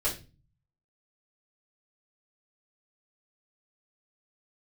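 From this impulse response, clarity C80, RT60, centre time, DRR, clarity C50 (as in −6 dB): 16.5 dB, 0.30 s, 20 ms, −7.0 dB, 9.5 dB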